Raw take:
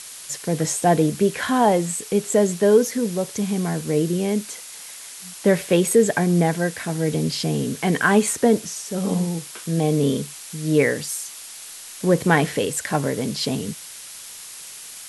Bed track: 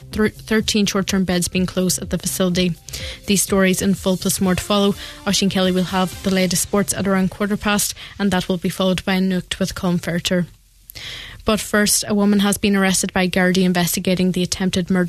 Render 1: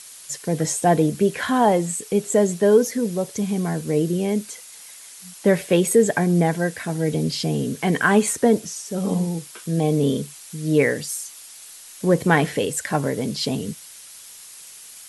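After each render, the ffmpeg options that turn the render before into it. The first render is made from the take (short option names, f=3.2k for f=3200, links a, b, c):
-af "afftdn=nr=6:nf=-39"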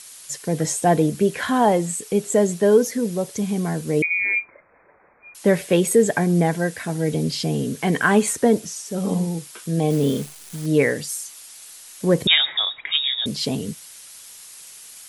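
-filter_complex "[0:a]asettb=1/sr,asplit=3[a][b][c];[a]atrim=end=4.024[d];[b]atrim=start=4.02:end=5.35,asetpts=PTS-STARTPTS,afade=t=in:d=0.004:c=qsin,afade=t=out:st=1.326:d=0.004:c=qsin,lowpass=f=2.2k:t=q:w=0.5098,lowpass=f=2.2k:t=q:w=0.6013,lowpass=f=2.2k:t=q:w=0.9,lowpass=f=2.2k:t=q:w=2.563,afreqshift=-2600[e];[c]atrim=start=5.346[f];[d][e]acrossfade=d=0.004:c1=hsin:c2=qsin[g];[g][f]acrossfade=d=0.004:c1=qsin:c2=hsin,asettb=1/sr,asplit=3[h][i][j];[h]atrim=end=9.904[k];[i]atrim=start=9.9:end=10.66,asetpts=PTS-STARTPTS,afade=t=in:d=0.004:c=qsin,afade=t=out:st=0.756:d=0.004:c=qsin,acrusher=bits=7:dc=4:mix=0:aa=0.000001[l];[j]atrim=start=10.656[m];[k][l]acrossfade=d=0.004:c1=hsin:c2=qsin[n];[n][m]acrossfade=d=0.004:c1=qsin:c2=hsin,asettb=1/sr,asplit=3[o][p][q];[o]atrim=end=12.274[r];[p]atrim=start=12.27:end=13.26,asetpts=PTS-STARTPTS,afade=t=in:d=0.004:c=qsin,afade=t=out:st=0.986:d=0.004:c=qsin,lowpass=f=3.3k:t=q:w=0.5098,lowpass=f=3.3k:t=q:w=0.6013,lowpass=f=3.3k:t=q:w=0.9,lowpass=f=3.3k:t=q:w=2.563,afreqshift=-3900[s];[q]atrim=start=13.256[t];[r][s]acrossfade=d=0.004:c1=hsin:c2=qsin[u];[u][t]acrossfade=d=0.004:c1=qsin:c2=hsin"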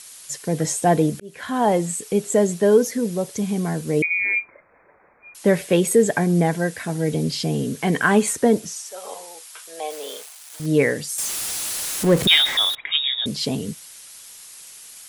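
-filter_complex "[0:a]asettb=1/sr,asplit=3[a][b][c];[a]atrim=end=8.764[d];[b]atrim=start=8.76:end=10.6,asetpts=PTS-STARTPTS,afade=t=in:d=0.004:c=qsin,afade=t=out:st=1.836:d=0.004:c=qsin,highpass=f=600:w=0.5412,highpass=f=600:w=1.3066[e];[c]atrim=start=10.596[f];[d][e]acrossfade=d=0.004:c1=hsin:c2=qsin[g];[g][f]acrossfade=d=0.004:c1=qsin:c2=hsin,asettb=1/sr,asplit=3[h][i][j];[h]atrim=end=11.184[k];[i]atrim=start=11.18:end=12.75,asetpts=PTS-STARTPTS,afade=t=in:d=0.004:c=qsin,afade=t=out:st=1.566:d=0.004:c=qsin,aeval=exprs='val(0)+0.5*0.075*sgn(val(0))':c=same[l];[j]atrim=start=12.746[m];[k][l]acrossfade=d=0.004:c1=hsin:c2=qsin[n];[n][m]acrossfade=d=0.004:c1=qsin:c2=hsin,asplit=2[o][p];[o]atrim=end=1.2,asetpts=PTS-STARTPTS,afade=t=out:st=1.196:d=0.004:c=hsin[q];[p]atrim=start=1.2,asetpts=PTS-STARTPTS,afade=t=in:d=0.56[r];[q][r]concat=n=2:v=0:a=1"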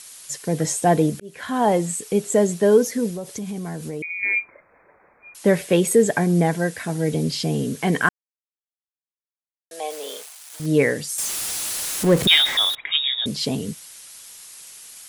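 -filter_complex "[0:a]asettb=1/sr,asplit=3[a][b][c];[a]atrim=end=3.094[d];[b]atrim=start=3.09:end=4.23,asetpts=PTS-STARTPTS,afade=t=in:d=0.004:c=qsin,afade=t=out:st=1.136:d=0.004:c=qsin,acompressor=threshold=-27dB:ratio=5:attack=3.2:release=140:knee=1:detection=peak[e];[c]atrim=start=4.226[f];[d][e]acrossfade=d=0.004:c1=hsin:c2=qsin[g];[g][f]acrossfade=d=0.004:c1=qsin:c2=hsin,asplit=3[h][i][j];[h]atrim=end=8.09,asetpts=PTS-STARTPTS,afade=t=out:st=8.086:d=0.004:c=hsin[k];[i]atrim=start=8.09:end=9.71,asetpts=PTS-STARTPTS,volume=0[l];[j]atrim=start=9.71,asetpts=PTS-STARTPTS,afade=t=in:d=0.004:c=hsin[m];[k][l][m]concat=n=3:v=0:a=1"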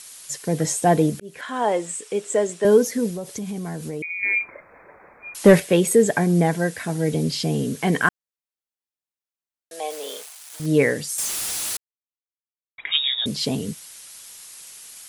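-filter_complex "[0:a]asettb=1/sr,asplit=3[a][b][c];[a]atrim=end=1.414[d];[b]atrim=start=1.41:end=2.65,asetpts=PTS-STARTPTS,afade=t=in:d=0.004:c=qsin,afade=t=out:st=1.236:d=0.004:c=qsin,highpass=390,equalizer=f=760:t=q:w=4:g=-4,equalizer=f=4.4k:t=q:w=4:g=-5,equalizer=f=6.3k:t=q:w=4:g=-4,lowpass=f=8.8k:w=0.5412,lowpass=f=8.8k:w=1.3066[e];[c]atrim=start=2.646[f];[d][e]acrossfade=d=0.004:c1=hsin:c2=qsin[g];[g][f]acrossfade=d=0.004:c1=qsin:c2=hsin,asettb=1/sr,asplit=3[h][i][j];[h]atrim=end=4.404[k];[i]atrim=start=4.4:end=5.6,asetpts=PTS-STARTPTS,afade=t=in:d=0.004:c=qsin,afade=t=out:st=1.196:d=0.004:c=qsin,acontrast=84[l];[j]atrim=start=5.596[m];[k][l]acrossfade=d=0.004:c1=hsin:c2=qsin[n];[n][m]acrossfade=d=0.004:c1=qsin:c2=hsin,asplit=3[o][p][q];[o]atrim=end=11.77,asetpts=PTS-STARTPTS,afade=t=out:st=11.766:d=0.004:c=hsin[r];[p]atrim=start=11.77:end=12.78,asetpts=PTS-STARTPTS,volume=0[s];[q]atrim=start=12.78,asetpts=PTS-STARTPTS,afade=t=in:d=0.004:c=hsin[t];[r][s][t]concat=n=3:v=0:a=1"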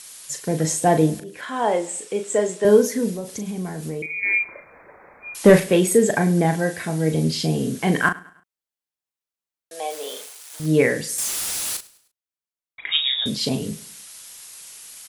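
-filter_complex "[0:a]asplit=2[a][b];[b]adelay=38,volume=-7.5dB[c];[a][c]amix=inputs=2:normalize=0,aecho=1:1:103|206|309:0.0891|0.0365|0.015"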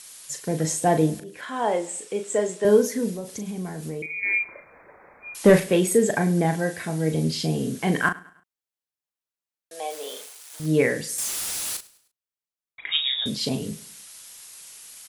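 -af "volume=-3dB"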